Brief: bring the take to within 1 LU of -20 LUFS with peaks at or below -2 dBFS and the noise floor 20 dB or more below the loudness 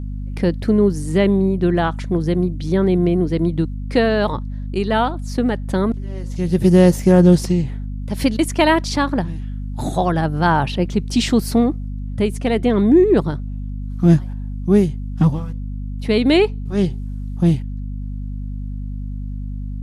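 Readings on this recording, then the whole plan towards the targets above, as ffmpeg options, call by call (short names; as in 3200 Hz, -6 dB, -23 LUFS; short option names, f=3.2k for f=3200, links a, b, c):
hum 50 Hz; harmonics up to 250 Hz; hum level -24 dBFS; loudness -18.0 LUFS; peak -2.0 dBFS; loudness target -20.0 LUFS
-> -af "bandreject=f=50:t=h:w=6,bandreject=f=100:t=h:w=6,bandreject=f=150:t=h:w=6,bandreject=f=200:t=h:w=6,bandreject=f=250:t=h:w=6"
-af "volume=-2dB"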